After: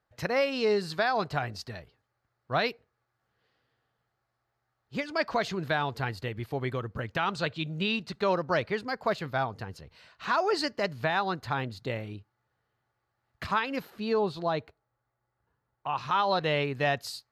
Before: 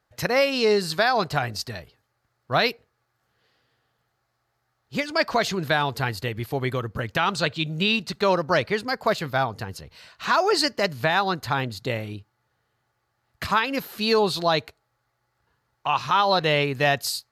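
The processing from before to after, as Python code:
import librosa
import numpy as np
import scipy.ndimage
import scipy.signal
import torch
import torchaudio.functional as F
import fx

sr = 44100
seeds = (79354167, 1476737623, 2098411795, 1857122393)

y = fx.lowpass(x, sr, hz=fx.steps((0.0, 3300.0), (13.9, 1100.0), (15.98, 3200.0)), slope=6)
y = F.gain(torch.from_numpy(y), -5.5).numpy()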